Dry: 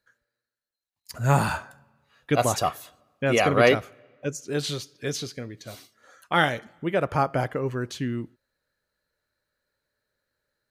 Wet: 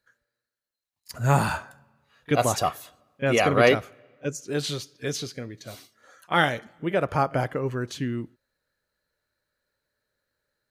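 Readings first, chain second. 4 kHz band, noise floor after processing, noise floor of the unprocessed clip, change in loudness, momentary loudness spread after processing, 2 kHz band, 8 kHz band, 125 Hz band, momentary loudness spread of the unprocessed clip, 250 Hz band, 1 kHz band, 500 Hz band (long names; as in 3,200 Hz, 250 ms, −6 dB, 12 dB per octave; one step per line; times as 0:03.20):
0.0 dB, below −85 dBFS, below −85 dBFS, 0.0 dB, 17 LU, 0.0 dB, 0.0 dB, 0.0 dB, 17 LU, 0.0 dB, 0.0 dB, 0.0 dB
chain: echo ahead of the sound 31 ms −22 dB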